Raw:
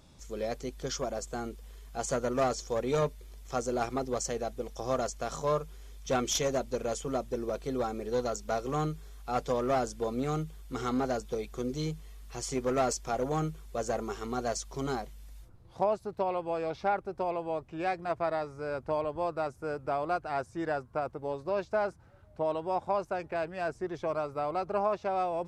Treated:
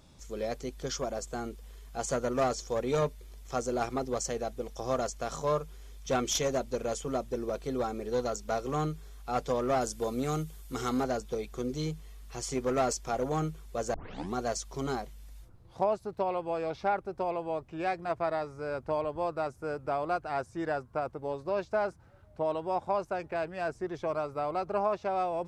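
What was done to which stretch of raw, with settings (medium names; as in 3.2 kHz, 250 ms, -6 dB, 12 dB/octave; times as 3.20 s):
9.81–11.04 s: treble shelf 5.9 kHz +10 dB
13.94 s: tape start 0.40 s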